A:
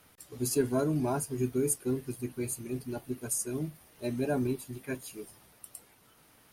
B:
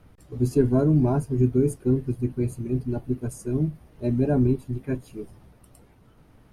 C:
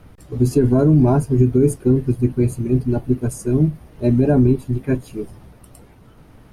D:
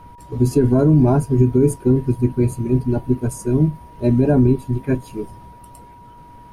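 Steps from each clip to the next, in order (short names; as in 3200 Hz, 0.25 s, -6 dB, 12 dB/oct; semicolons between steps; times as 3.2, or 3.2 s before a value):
tilt -4 dB/oct; gain +1.5 dB
maximiser +13.5 dB; gain -5 dB
whine 960 Hz -42 dBFS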